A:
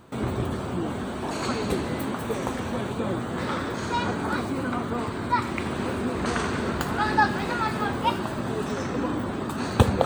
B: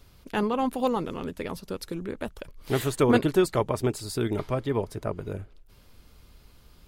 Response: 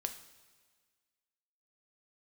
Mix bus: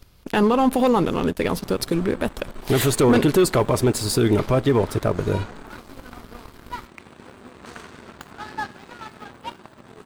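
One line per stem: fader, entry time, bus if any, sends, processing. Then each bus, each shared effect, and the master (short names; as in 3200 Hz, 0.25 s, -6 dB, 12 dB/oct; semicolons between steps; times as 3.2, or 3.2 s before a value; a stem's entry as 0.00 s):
-15.5 dB, 1.40 s, no send, low shelf 370 Hz -3.5 dB
+3.0 dB, 0.00 s, send -14.5 dB, dry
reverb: on, pre-delay 3 ms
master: sample leveller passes 2; limiter -10 dBFS, peak gain reduction 7 dB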